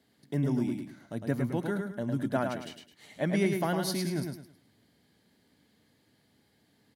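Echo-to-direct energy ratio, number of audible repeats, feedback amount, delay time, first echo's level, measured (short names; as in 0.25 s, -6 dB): -4.5 dB, 3, 30%, 0.106 s, -5.0 dB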